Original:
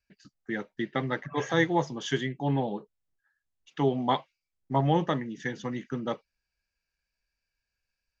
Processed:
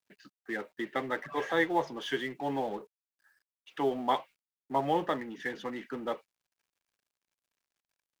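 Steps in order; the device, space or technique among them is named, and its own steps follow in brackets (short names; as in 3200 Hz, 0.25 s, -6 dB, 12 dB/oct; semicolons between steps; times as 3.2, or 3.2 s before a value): phone line with mismatched companding (BPF 340–3300 Hz; G.711 law mismatch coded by mu); gain -2 dB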